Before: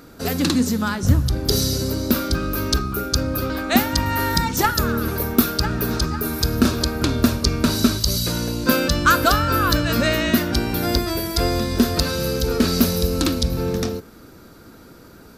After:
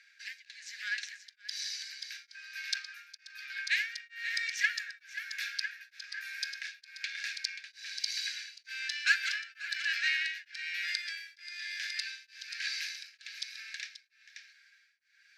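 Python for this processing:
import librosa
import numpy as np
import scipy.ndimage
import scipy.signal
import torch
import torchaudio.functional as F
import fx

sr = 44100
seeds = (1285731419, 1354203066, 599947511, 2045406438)

y = scipy.signal.sosfilt(scipy.signal.butter(2, 2600.0, 'lowpass', fs=sr, output='sos'), x)
y = fx.tube_stage(y, sr, drive_db=11.0, bias=0.4)
y = scipy.signal.sosfilt(scipy.signal.cheby1(6, 6, 1600.0, 'highpass', fs=sr, output='sos'), y)
y = y + 10.0 ** (-7.5 / 20.0) * np.pad(y, (int(533 * sr / 1000.0), 0))[:len(y)]
y = y * np.abs(np.cos(np.pi * 1.1 * np.arange(len(y)) / sr))
y = y * 10.0 ** (4.5 / 20.0)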